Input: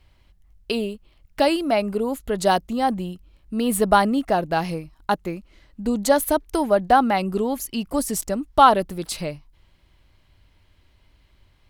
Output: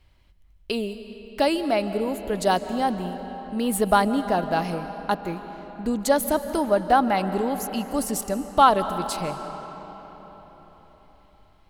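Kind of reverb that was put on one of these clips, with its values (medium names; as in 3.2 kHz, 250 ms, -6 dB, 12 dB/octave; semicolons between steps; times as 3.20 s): algorithmic reverb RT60 4.6 s, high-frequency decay 0.65×, pre-delay 110 ms, DRR 10 dB; trim -2.5 dB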